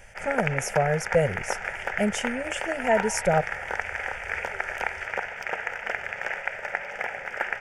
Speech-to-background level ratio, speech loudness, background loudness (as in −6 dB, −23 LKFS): 3.5 dB, −27.0 LKFS, −30.5 LKFS